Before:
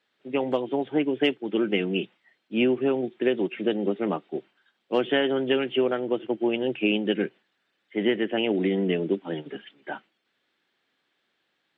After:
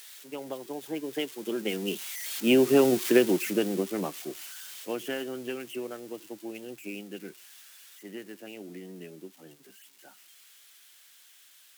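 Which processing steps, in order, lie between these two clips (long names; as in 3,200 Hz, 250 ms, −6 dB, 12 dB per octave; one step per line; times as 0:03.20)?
spike at every zero crossing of −24 dBFS
source passing by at 0:02.92, 14 m/s, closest 5.3 metres
level +4.5 dB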